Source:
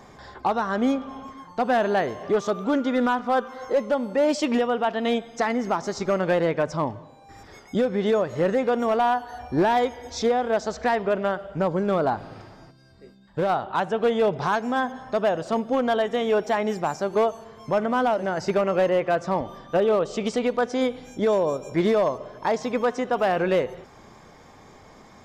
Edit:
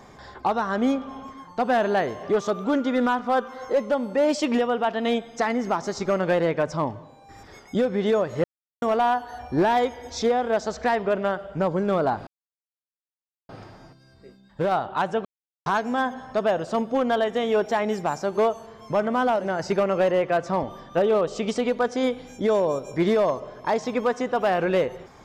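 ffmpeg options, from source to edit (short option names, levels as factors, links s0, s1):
-filter_complex "[0:a]asplit=6[s0][s1][s2][s3][s4][s5];[s0]atrim=end=8.44,asetpts=PTS-STARTPTS,afade=t=out:st=8.436:d=0.004:c=hsin[s6];[s1]atrim=start=8.44:end=8.82,asetpts=PTS-STARTPTS,volume=0[s7];[s2]atrim=start=8.82:end=12.27,asetpts=PTS-STARTPTS,afade=t=in:d=0.004:c=hsin,afade=t=out:st=3.446:d=0.004:c=hsin,apad=pad_dur=1.22[s8];[s3]atrim=start=12.27:end=14.03,asetpts=PTS-STARTPTS,afade=t=in:d=0.004:c=hsin,afade=t=out:st=1.756:d=0.004:c=hsin[s9];[s4]atrim=start=14.03:end=14.44,asetpts=PTS-STARTPTS,volume=0[s10];[s5]atrim=start=14.44,asetpts=PTS-STARTPTS,afade=t=in:d=0.004:c=hsin[s11];[s6][s7][s8][s9][s10][s11]concat=n=6:v=0:a=1"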